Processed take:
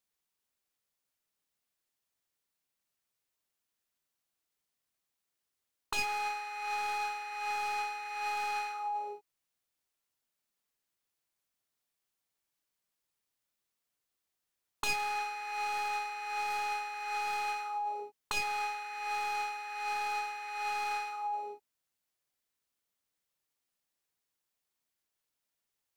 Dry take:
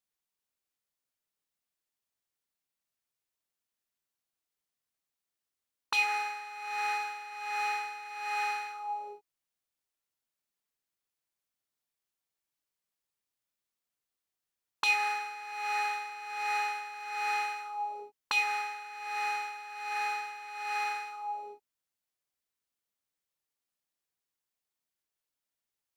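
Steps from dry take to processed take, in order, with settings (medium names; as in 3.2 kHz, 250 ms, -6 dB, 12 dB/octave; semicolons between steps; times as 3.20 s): tracing distortion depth 0.083 ms; dynamic bell 1.9 kHz, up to -6 dB, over -48 dBFS, Q 2.5; in parallel at +0.5 dB: compressor with a negative ratio -36 dBFS, ratio -0.5; on the sum: trim -5 dB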